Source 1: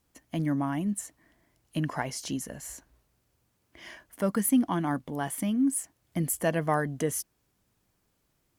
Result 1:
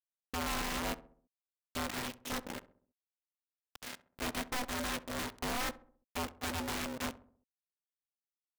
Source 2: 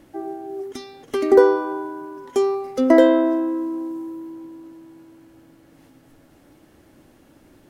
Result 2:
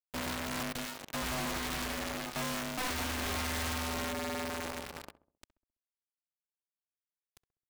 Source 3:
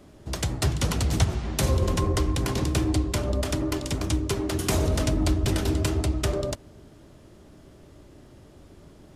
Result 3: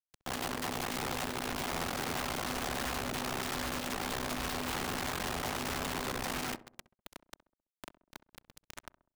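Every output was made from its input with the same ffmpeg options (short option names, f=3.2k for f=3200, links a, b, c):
-filter_complex "[0:a]acompressor=threshold=-26dB:ratio=3,aresample=8000,aresample=44100,aresample=16000,asoftclip=type=tanh:threshold=-31dB,aresample=44100,acrusher=bits=4:dc=4:mix=0:aa=0.000001,acompressor=mode=upward:threshold=-39dB:ratio=2.5,aecho=1:1:3.2:0.68,aeval=exprs='val(0)*sin(2*PI*250*n/s)':c=same,highpass=f=130:p=1,aeval=exprs='(mod(47.3*val(0)+1,2)-1)/47.3':c=same,asplit=2[a][b];[b]adelay=66,lowpass=f=1.1k:p=1,volume=-15dB,asplit=2[c][d];[d]adelay=66,lowpass=f=1.1k:p=1,volume=0.51,asplit=2[e][f];[f]adelay=66,lowpass=f=1.1k:p=1,volume=0.51,asplit=2[g][h];[h]adelay=66,lowpass=f=1.1k:p=1,volume=0.51,asplit=2[i][j];[j]adelay=66,lowpass=f=1.1k:p=1,volume=0.51[k];[c][e][g][i][k]amix=inputs=5:normalize=0[l];[a][l]amix=inputs=2:normalize=0,volume=4dB"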